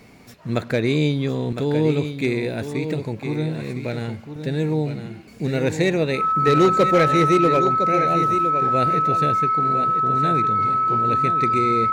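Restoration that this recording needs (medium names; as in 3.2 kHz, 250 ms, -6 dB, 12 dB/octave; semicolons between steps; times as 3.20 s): clip repair -9.5 dBFS; band-stop 1.3 kHz, Q 30; inverse comb 1009 ms -9 dB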